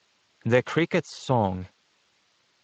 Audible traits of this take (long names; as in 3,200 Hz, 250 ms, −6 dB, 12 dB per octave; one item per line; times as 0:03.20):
a quantiser's noise floor 10 bits, dither triangular
Speex